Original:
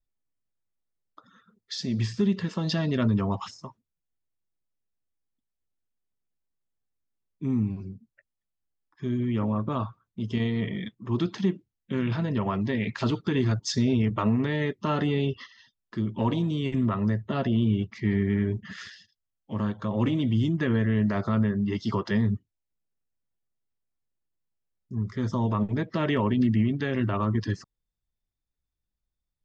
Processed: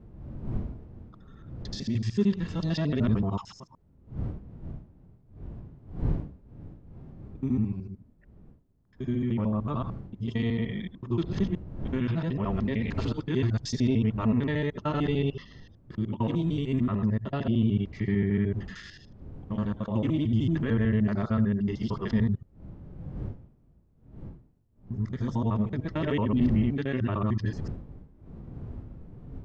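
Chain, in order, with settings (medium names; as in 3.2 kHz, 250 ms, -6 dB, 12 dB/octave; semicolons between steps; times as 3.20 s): time reversed locally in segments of 75 ms; wind noise 150 Hz -37 dBFS; harmonic-percussive split percussive -7 dB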